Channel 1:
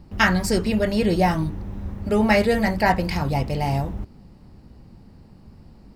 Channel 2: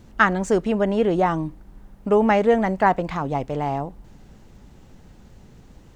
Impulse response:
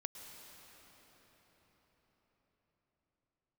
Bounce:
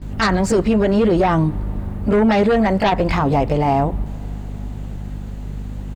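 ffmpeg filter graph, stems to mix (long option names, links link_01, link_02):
-filter_complex "[0:a]aemphasis=mode=reproduction:type=50fm,volume=2dB[link_01];[1:a]equalizer=frequency=5400:width_type=o:width=0.45:gain=-8,aeval=exprs='0.794*sin(PI/2*3.16*val(0)/0.794)':channel_layout=same,aeval=exprs='val(0)+0.0631*(sin(2*PI*50*n/s)+sin(2*PI*2*50*n/s)/2+sin(2*PI*3*50*n/s)/3+sin(2*PI*4*50*n/s)/4+sin(2*PI*5*50*n/s)/5)':channel_layout=same,adelay=17,volume=-3.5dB,asplit=2[link_02][link_03];[link_03]volume=-20dB[link_04];[2:a]atrim=start_sample=2205[link_05];[link_04][link_05]afir=irnorm=-1:irlink=0[link_06];[link_01][link_02][link_06]amix=inputs=3:normalize=0,alimiter=limit=-8.5dB:level=0:latency=1:release=99"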